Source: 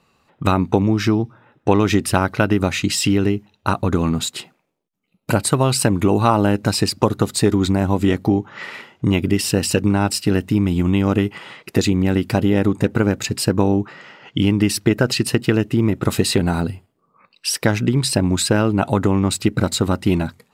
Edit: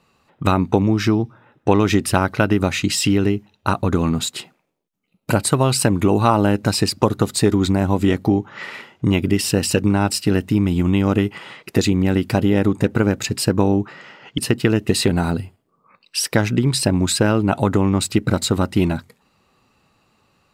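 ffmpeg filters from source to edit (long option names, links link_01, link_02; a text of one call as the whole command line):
ffmpeg -i in.wav -filter_complex "[0:a]asplit=3[link_01][link_02][link_03];[link_01]atrim=end=14.382[link_04];[link_02]atrim=start=15.218:end=15.732[link_05];[link_03]atrim=start=16.188[link_06];[link_04][link_05]acrossfade=duration=0.004:curve1=hsin:curve2=hsin[link_07];[link_07][link_06]acrossfade=duration=0.004:curve1=hsin:curve2=hsin" out.wav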